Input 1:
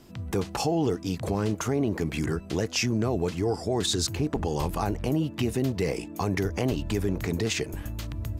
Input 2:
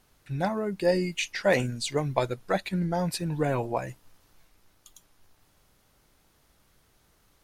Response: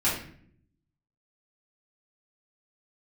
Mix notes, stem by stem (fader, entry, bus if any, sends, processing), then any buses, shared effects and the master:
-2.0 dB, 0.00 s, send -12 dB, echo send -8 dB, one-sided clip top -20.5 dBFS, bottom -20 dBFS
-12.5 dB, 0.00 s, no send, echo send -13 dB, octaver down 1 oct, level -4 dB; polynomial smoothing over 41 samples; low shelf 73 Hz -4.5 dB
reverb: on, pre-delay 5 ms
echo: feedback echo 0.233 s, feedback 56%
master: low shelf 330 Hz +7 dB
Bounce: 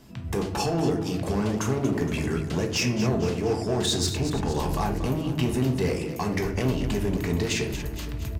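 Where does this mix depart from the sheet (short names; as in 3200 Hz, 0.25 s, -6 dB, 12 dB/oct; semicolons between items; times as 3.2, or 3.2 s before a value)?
stem 2 -12.5 dB -> -19.0 dB; master: missing low shelf 330 Hz +7 dB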